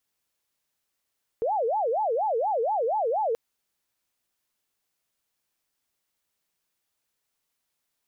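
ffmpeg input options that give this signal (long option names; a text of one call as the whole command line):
ffmpeg -f lavfi -i "aevalsrc='0.075*sin(2*PI*(659.5*t-215.5/(2*PI*4.2)*sin(2*PI*4.2*t)))':duration=1.93:sample_rate=44100" out.wav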